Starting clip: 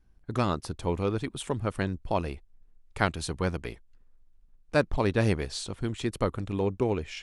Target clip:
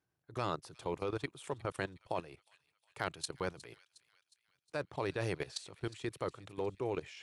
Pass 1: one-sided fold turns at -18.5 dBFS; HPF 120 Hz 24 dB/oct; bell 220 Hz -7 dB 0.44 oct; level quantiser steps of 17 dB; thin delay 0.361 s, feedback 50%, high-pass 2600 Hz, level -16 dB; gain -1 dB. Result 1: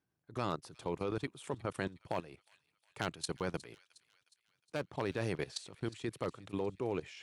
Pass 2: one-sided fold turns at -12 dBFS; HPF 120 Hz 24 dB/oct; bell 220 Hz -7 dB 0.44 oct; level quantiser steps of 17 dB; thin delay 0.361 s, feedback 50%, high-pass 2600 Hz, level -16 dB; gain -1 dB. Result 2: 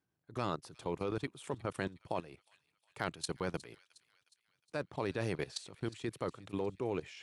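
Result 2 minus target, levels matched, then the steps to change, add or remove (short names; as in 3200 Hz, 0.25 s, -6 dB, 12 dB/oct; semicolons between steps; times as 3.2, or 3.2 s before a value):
250 Hz band +2.5 dB
change: bell 220 Hz -17.5 dB 0.44 oct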